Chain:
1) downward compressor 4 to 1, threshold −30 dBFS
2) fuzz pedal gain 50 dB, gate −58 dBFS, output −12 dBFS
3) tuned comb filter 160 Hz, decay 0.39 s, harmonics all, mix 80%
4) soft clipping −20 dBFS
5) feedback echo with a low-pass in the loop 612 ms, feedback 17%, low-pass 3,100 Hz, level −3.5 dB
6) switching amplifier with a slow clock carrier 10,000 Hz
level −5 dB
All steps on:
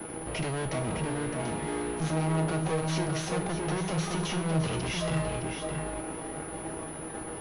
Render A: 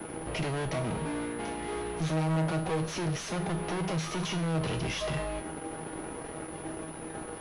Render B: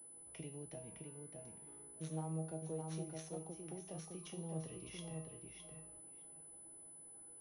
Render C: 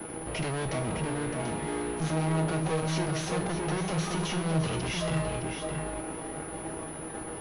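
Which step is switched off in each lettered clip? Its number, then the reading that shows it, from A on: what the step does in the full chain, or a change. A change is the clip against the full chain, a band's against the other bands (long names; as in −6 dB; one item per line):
5, change in momentary loudness spread +1 LU
2, distortion level −1 dB
1, average gain reduction 2.0 dB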